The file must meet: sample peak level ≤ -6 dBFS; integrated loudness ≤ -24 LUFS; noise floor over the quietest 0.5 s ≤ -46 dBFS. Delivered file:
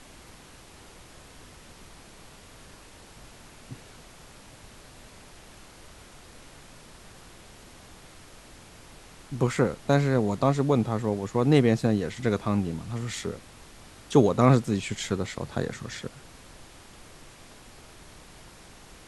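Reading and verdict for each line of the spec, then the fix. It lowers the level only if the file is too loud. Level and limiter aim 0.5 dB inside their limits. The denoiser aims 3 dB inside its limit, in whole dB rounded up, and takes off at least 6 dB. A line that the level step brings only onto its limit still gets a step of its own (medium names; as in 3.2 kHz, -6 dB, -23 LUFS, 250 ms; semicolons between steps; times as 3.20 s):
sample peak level -5.0 dBFS: fail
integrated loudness -25.5 LUFS: pass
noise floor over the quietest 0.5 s -50 dBFS: pass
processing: peak limiter -6.5 dBFS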